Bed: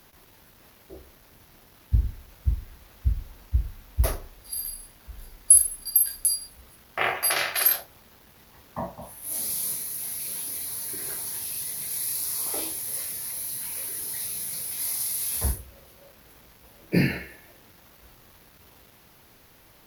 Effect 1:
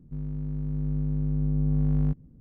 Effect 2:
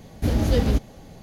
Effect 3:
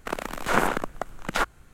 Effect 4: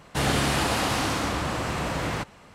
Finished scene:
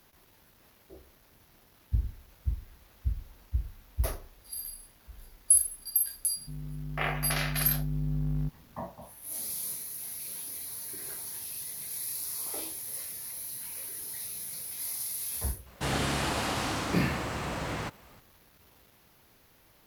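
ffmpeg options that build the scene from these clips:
ffmpeg -i bed.wav -i cue0.wav -i cue1.wav -i cue2.wav -i cue3.wav -filter_complex "[0:a]volume=-6.5dB[link_01];[1:a]equalizer=frequency=490:width=3.8:gain=-6.5,atrim=end=2.4,asetpts=PTS-STARTPTS,volume=-6.5dB,afade=type=in:duration=0.004:curve=hsin,afade=type=out:start_time=2.396:duration=0.004:curve=hsin,adelay=6360[link_02];[4:a]atrim=end=2.54,asetpts=PTS-STARTPTS,volume=-6dB,afade=type=in:duration=0.004:curve=hsin,afade=type=out:start_time=2.536:duration=0.004:curve=hsin,adelay=15660[link_03];[link_01][link_02][link_03]amix=inputs=3:normalize=0" out.wav

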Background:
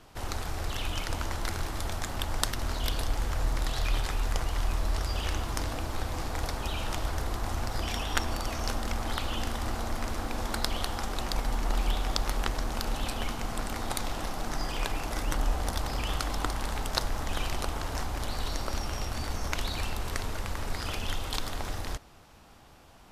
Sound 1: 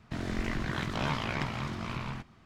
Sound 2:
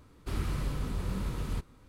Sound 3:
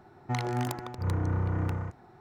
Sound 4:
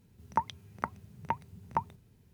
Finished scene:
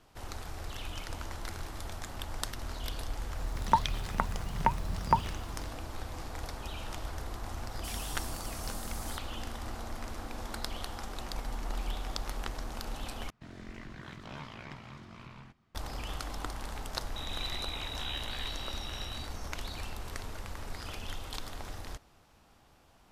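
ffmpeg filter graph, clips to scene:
ffmpeg -i bed.wav -i cue0.wav -i cue1.wav -i cue2.wav -i cue3.wav -filter_complex "[1:a]asplit=2[link_01][link_02];[0:a]volume=-7.5dB[link_03];[4:a]alimiter=level_in=16.5dB:limit=-1dB:release=50:level=0:latency=1[link_04];[2:a]aexciter=amount=13.1:drive=5.6:freq=4100[link_05];[link_02]lowpass=frequency=3400:width_type=q:width=0.5098,lowpass=frequency=3400:width_type=q:width=0.6013,lowpass=frequency=3400:width_type=q:width=0.9,lowpass=frequency=3400:width_type=q:width=2.563,afreqshift=-4000[link_06];[link_03]asplit=2[link_07][link_08];[link_07]atrim=end=13.304[link_09];[link_01]atrim=end=2.45,asetpts=PTS-STARTPTS,volume=-13dB[link_10];[link_08]atrim=start=15.746[link_11];[link_04]atrim=end=2.33,asetpts=PTS-STARTPTS,volume=-7dB,afade=type=in:duration=0.004:curve=hsin,afade=type=out:start_time=2.326:duration=0.004:curve=hsin,adelay=3360[link_12];[link_05]atrim=end=1.88,asetpts=PTS-STARTPTS,volume=-15.5dB,afade=type=in:duration=0.004:curve=hsin,afade=type=out:start_time=1.876:duration=0.004:curve=hsin,adelay=7570[link_13];[link_06]atrim=end=2.45,asetpts=PTS-STARTPTS,volume=-8.5dB,afade=type=in:duration=0.004:curve=hsin,afade=type=out:start_time=2.446:duration=0.004:curve=hsin,adelay=17040[link_14];[link_09][link_10]acrossfade=duration=0.004:curve1=hsin:curve2=hsin[link_15];[link_15][link_11]acrossfade=duration=0.004:curve1=hsin:curve2=hsin[link_16];[link_16][link_12][link_13][link_14]amix=inputs=4:normalize=0" out.wav

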